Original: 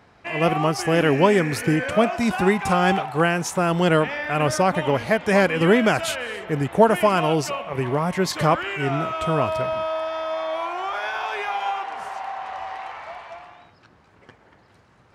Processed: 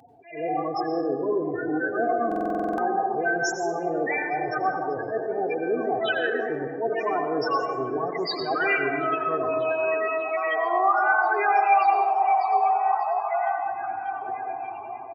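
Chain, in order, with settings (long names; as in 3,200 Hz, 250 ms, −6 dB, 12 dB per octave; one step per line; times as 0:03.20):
each half-wave held at its own peak
reversed playback
downward compressor 5 to 1, threshold −29 dBFS, peak gain reduction 19 dB
reversed playback
spectral peaks only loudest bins 8
in parallel at −3 dB: brickwall limiter −32 dBFS, peak gain reduction 11 dB
on the sum: high-pass filter 200 Hz 12 dB per octave
tilt shelving filter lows −7.5 dB, about 630 Hz
comb filter 2.6 ms, depth 77%
echo through a band-pass that steps 591 ms, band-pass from 290 Hz, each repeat 0.7 octaves, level −5.5 dB
dense smooth reverb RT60 1.3 s, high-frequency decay 0.5×, pre-delay 80 ms, DRR 4.5 dB
buffer that repeats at 0:02.27, samples 2,048, times 10
level that may rise only so fast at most 130 dB per second
level +2.5 dB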